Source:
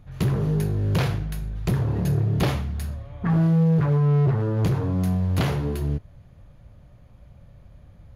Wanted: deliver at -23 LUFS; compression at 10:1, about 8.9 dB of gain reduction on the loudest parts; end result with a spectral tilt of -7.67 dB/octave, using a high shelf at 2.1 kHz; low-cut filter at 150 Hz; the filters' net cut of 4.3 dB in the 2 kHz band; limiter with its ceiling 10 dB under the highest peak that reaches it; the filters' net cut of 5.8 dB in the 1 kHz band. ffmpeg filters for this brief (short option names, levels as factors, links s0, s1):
-af "highpass=150,equalizer=f=1000:t=o:g=-7.5,equalizer=f=2000:t=o:g=-7,highshelf=f=2100:g=6.5,acompressor=threshold=0.0398:ratio=10,volume=3.76,alimiter=limit=0.178:level=0:latency=1"